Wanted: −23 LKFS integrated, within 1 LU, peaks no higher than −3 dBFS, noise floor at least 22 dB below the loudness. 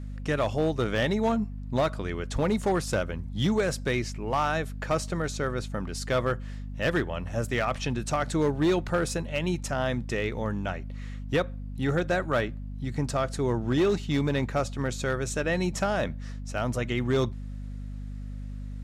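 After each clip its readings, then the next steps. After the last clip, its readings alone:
share of clipped samples 0.8%; peaks flattened at −18.5 dBFS; mains hum 50 Hz; hum harmonics up to 250 Hz; level of the hum −34 dBFS; integrated loudness −28.5 LKFS; sample peak −18.5 dBFS; target loudness −23.0 LKFS
→ clipped peaks rebuilt −18.5 dBFS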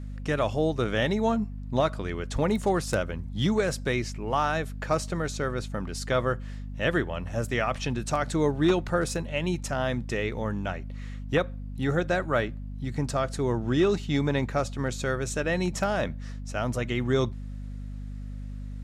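share of clipped samples 0.0%; mains hum 50 Hz; hum harmonics up to 250 Hz; level of the hum −34 dBFS
→ hum removal 50 Hz, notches 5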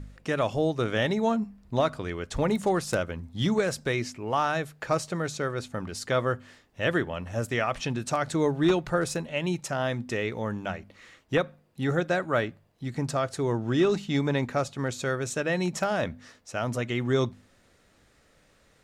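mains hum none found; integrated loudness −28.5 LKFS; sample peak −10.5 dBFS; target loudness −23.0 LKFS
→ level +5.5 dB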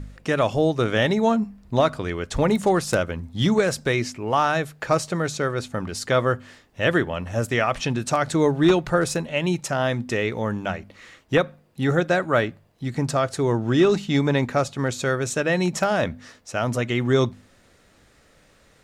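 integrated loudness −23.0 LKFS; sample peak −5.0 dBFS; background noise floor −57 dBFS

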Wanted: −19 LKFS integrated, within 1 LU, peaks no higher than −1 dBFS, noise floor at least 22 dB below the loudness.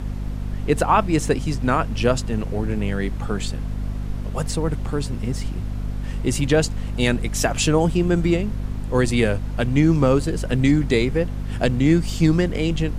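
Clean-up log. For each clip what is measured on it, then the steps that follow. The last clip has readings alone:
mains hum 50 Hz; hum harmonics up to 250 Hz; level of the hum −24 dBFS; background noise floor −28 dBFS; target noise floor −44 dBFS; integrated loudness −21.5 LKFS; sample peak −4.5 dBFS; target loudness −19.0 LKFS
→ mains-hum notches 50/100/150/200/250 Hz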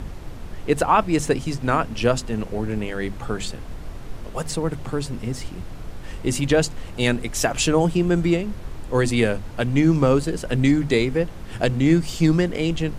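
mains hum none found; background noise floor −36 dBFS; target noise floor −44 dBFS
→ noise reduction from a noise print 8 dB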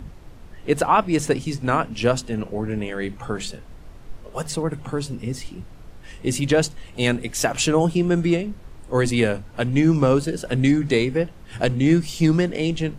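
background noise floor −43 dBFS; target noise floor −44 dBFS
→ noise reduction from a noise print 6 dB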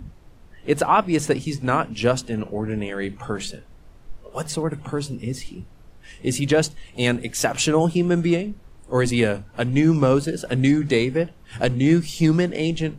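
background noise floor −48 dBFS; integrated loudness −22.0 LKFS; sample peak −5.5 dBFS; target loudness −19.0 LKFS
→ level +3 dB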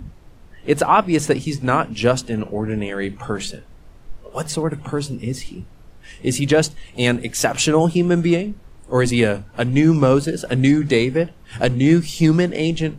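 integrated loudness −19.0 LKFS; sample peak −2.5 dBFS; background noise floor −45 dBFS

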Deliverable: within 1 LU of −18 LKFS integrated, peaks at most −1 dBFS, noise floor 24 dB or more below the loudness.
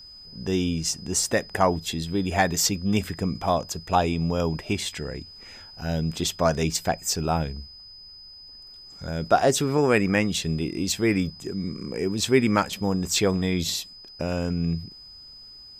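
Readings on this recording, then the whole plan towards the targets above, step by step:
interfering tone 5,000 Hz; level of the tone −43 dBFS; integrated loudness −25.0 LKFS; sample peak −4.5 dBFS; target loudness −18.0 LKFS
→ notch filter 5,000 Hz, Q 30
level +7 dB
brickwall limiter −1 dBFS

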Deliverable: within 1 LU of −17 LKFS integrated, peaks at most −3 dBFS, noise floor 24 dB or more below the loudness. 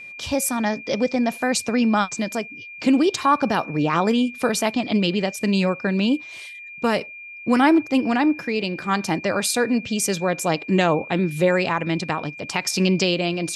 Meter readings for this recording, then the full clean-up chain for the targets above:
interfering tone 2,400 Hz; level of the tone −36 dBFS; integrated loudness −21.5 LKFS; sample peak −5.5 dBFS; target loudness −17.0 LKFS
→ notch filter 2,400 Hz, Q 30
level +4.5 dB
brickwall limiter −3 dBFS

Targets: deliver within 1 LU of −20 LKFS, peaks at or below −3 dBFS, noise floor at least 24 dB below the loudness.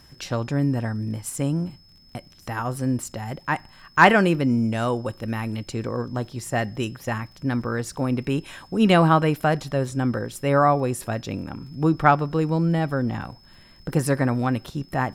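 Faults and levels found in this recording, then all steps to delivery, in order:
crackle rate 50 per second; interfering tone 5,200 Hz; level of the tone −53 dBFS; integrated loudness −23.5 LKFS; sample peak −2.5 dBFS; target loudness −20.0 LKFS
→ click removal
notch filter 5,200 Hz, Q 30
level +3.5 dB
brickwall limiter −3 dBFS

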